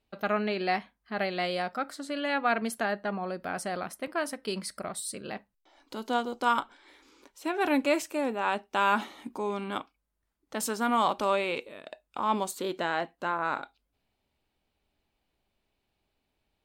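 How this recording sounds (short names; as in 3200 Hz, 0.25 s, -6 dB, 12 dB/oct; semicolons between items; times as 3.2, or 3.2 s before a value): noise floor -80 dBFS; spectral tilt -3.5 dB/oct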